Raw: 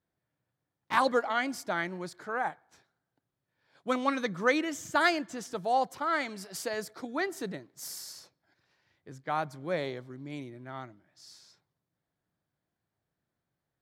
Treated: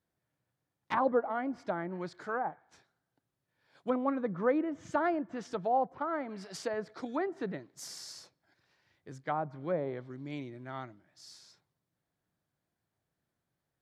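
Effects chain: 7.06–7.51 s: treble shelf 2.2 kHz +8.5 dB; low-pass that closes with the level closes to 870 Hz, closed at -28 dBFS

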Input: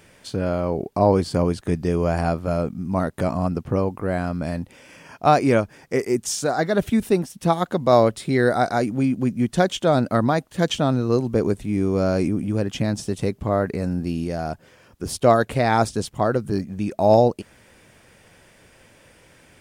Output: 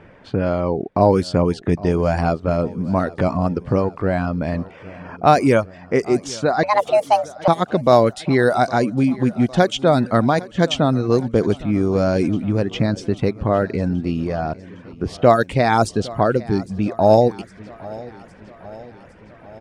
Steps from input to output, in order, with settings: level-controlled noise filter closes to 1.5 kHz, open at -13 dBFS; 6.63–7.48 s: frequency shift +410 Hz; in parallel at +1 dB: compression, threshold -31 dBFS, peak gain reduction 19.5 dB; on the sum: reverb removal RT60 0.51 s; on a send: feedback delay 809 ms, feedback 59%, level -20 dB; on the sum: trim +2 dB

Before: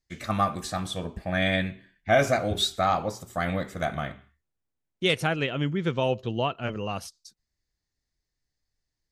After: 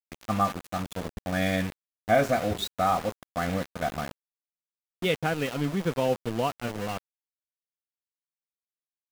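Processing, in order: treble shelf 2.3 kHz -9.5 dB; comb 4.1 ms, depth 31%; small samples zeroed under -32 dBFS

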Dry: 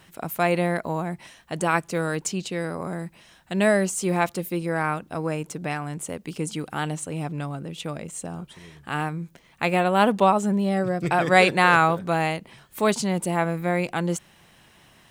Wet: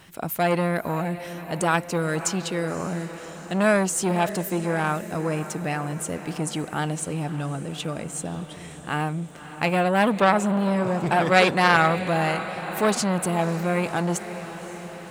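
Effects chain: on a send: echo that smears into a reverb 562 ms, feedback 63%, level -15 dB; on the sum: transformer saturation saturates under 1.8 kHz; trim +3 dB

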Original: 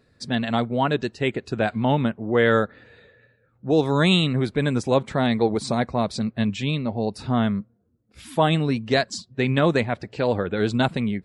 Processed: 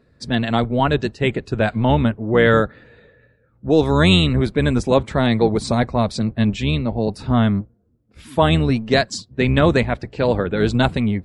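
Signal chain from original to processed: octave divider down 1 oct, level -5 dB; band-stop 760 Hz, Q 24; tape noise reduction on one side only decoder only; trim +4 dB

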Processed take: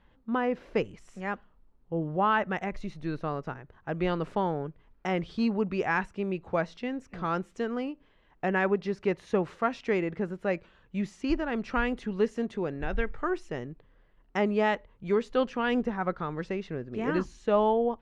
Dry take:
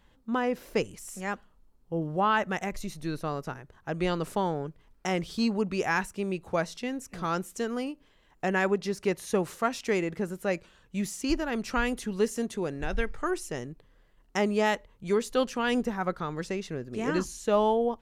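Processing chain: low-pass 2.8 kHz 12 dB/octave

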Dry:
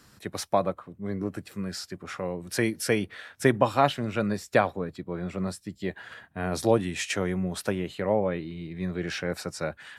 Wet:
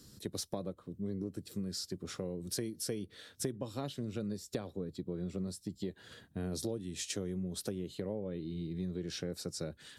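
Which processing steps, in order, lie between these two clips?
high-order bell 1.3 kHz -14 dB 2.4 oct; compression 6:1, threshold -36 dBFS, peak gain reduction 18.5 dB; trim +1 dB

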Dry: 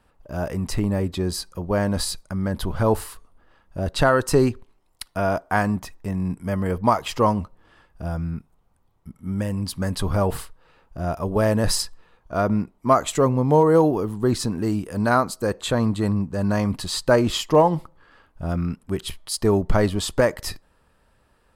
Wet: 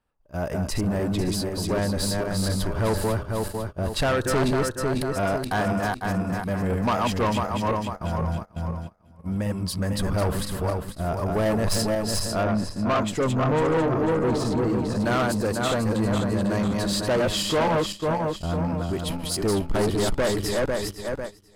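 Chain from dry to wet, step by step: backward echo that repeats 249 ms, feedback 64%, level -3 dB; saturation -18.5 dBFS, distortion -9 dB; gate -31 dBFS, range -16 dB; 12.43–15.00 s: treble shelf 5.9 kHz -11 dB

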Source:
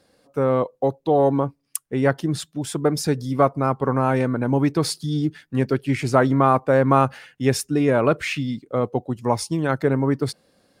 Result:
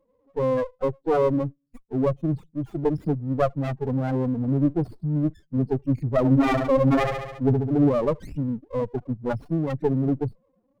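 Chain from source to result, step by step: 6.17–7.89 s: flutter echo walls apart 11.8 m, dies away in 1.1 s; loudest bins only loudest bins 4; sliding maximum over 17 samples

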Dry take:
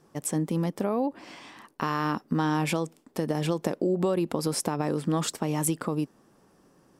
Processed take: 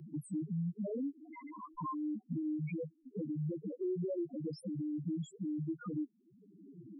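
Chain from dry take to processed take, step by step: waveshaping leveller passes 1; compression 2:1, threshold -41 dBFS, peak gain reduction 12 dB; loudest bins only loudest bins 1; three bands compressed up and down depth 70%; trim +5.5 dB

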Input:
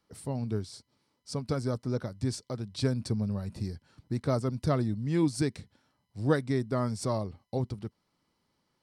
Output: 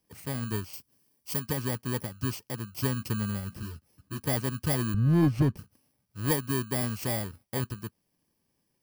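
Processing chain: bit-reversed sample order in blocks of 32 samples; 4.94–5.57 s: RIAA curve playback; saturation -15.5 dBFS, distortion -17 dB; 0.73–1.40 s: treble shelf 6.9 kHz +9 dB; 3.61–4.19 s: three-phase chorus

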